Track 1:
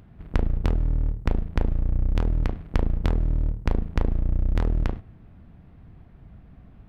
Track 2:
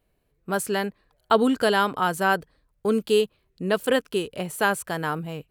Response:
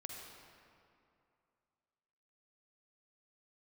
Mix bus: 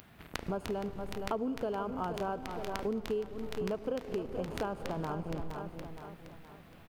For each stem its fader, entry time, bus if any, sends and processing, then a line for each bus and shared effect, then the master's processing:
+1.5 dB, 0.00 s, send -11 dB, echo send -12.5 dB, tilt +4.5 dB/oct; auto duck -8 dB, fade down 0.25 s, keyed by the second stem
0.0 dB, 0.00 s, send -9 dB, echo send -11 dB, level-crossing sampler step -29 dBFS; running mean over 23 samples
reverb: on, RT60 2.6 s, pre-delay 43 ms
echo: feedback echo 0.468 s, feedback 43%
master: compressor 5:1, threshold -33 dBFS, peak gain reduction 17 dB

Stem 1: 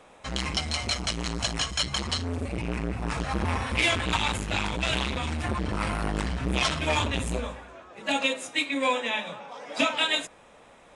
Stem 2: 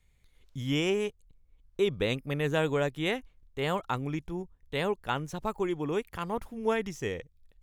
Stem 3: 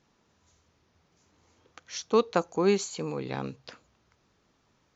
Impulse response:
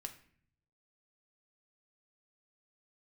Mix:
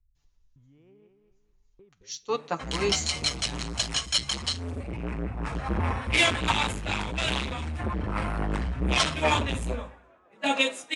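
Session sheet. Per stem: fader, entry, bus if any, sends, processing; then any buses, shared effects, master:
-0.5 dB, 2.35 s, no send, no echo send, dry
1.82 s -12.5 dB -> 2.11 s -19.5 dB, 0.00 s, no send, echo send -7 dB, tilt -2.5 dB/oct; compressor 4:1, threshold -31 dBFS, peak gain reduction 11 dB
-2.0 dB, 0.15 s, send -9.5 dB, no echo send, de-esser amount 70%; high shelf 2200 Hz +11.5 dB; comb 6.9 ms, depth 66%; auto duck -10 dB, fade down 1.05 s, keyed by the second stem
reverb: on, RT60 0.55 s, pre-delay 5 ms
echo: feedback echo 0.221 s, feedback 33%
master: upward compressor, threshold -38 dBFS; three-band expander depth 100%

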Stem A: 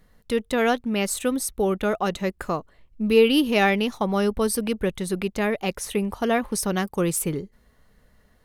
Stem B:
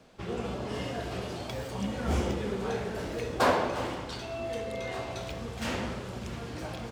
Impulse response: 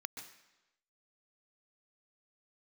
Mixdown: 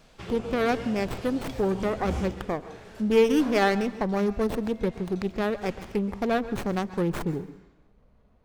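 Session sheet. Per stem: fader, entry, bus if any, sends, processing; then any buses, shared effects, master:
-5.5 dB, 0.00 s, send -4 dB, Wiener smoothing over 25 samples; running maximum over 9 samples
2.2 s -5.5 dB -> 2.58 s -16 dB, 0.00 s, no send, dry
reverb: on, RT60 1.0 s, pre-delay 0.121 s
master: low shelf 170 Hz +4.5 dB; mismatched tape noise reduction encoder only

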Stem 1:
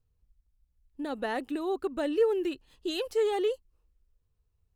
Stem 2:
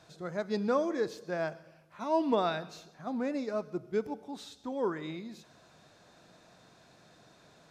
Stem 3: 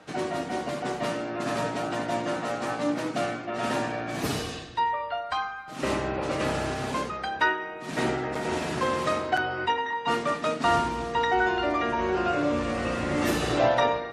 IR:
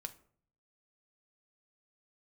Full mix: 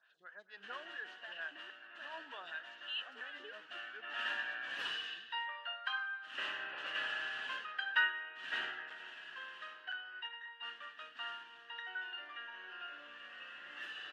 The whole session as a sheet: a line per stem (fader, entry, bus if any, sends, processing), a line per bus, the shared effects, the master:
-14.0 dB, 0.00 s, no send, stepped high-pass 5.3 Hz 260–7200 Hz
-2.0 dB, 0.00 s, no send, photocell phaser 4.4 Hz
8.67 s -2.5 dB -> 9.11 s -12.5 dB, 0.55 s, no send, auto duck -10 dB, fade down 1.45 s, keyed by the first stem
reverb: off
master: double band-pass 2200 Hz, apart 0.8 oct; bell 2200 Hz +8 dB 0.93 oct

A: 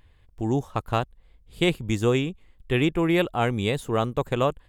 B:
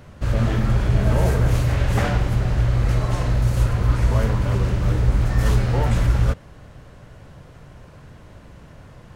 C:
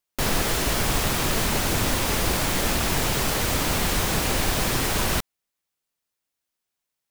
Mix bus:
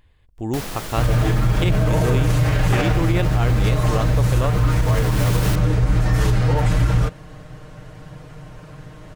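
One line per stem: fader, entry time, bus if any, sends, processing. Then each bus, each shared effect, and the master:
0.0 dB, 0.00 s, no send, dry
+2.5 dB, 0.75 s, no send, comb 6.5 ms, depth 83%
-2.5 dB, 0.35 s, no send, wavefolder -16.5 dBFS; auto duck -13 dB, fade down 1.85 s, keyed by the first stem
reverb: off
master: limiter -9 dBFS, peak gain reduction 7 dB

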